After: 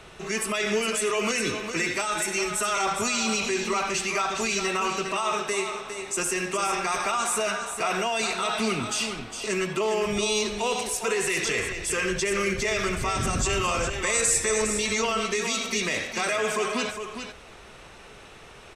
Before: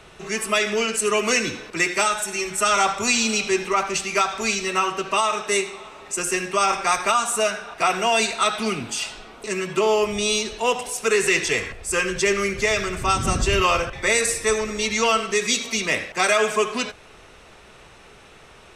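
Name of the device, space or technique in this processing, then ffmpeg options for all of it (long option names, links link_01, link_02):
stacked limiters: -filter_complex "[0:a]alimiter=limit=-11.5dB:level=0:latency=1:release=149,alimiter=limit=-18dB:level=0:latency=1:release=12,asettb=1/sr,asplit=3[link_01][link_02][link_03];[link_01]atrim=end=13.394[link_04];[link_02]atrim=start=13.39:end=14.62,asetpts=PTS-STARTPTS,afade=type=in:duration=0.004:curve=qsin,afade=type=out:start_time=1.226:duration=0.004:curve=qsin,equalizer=frequency=7300:width=2.5:gain=9.5[link_05];[link_03]atrim=start=14.616[link_06];[link_04][link_05]acrossfade=duration=0.004:curve1=hsin:curve2=qsin[link_07];[link_07][link_06]acrossfade=duration=0.004:curve1=qsin:curve2=hsin,aecho=1:1:408:0.398"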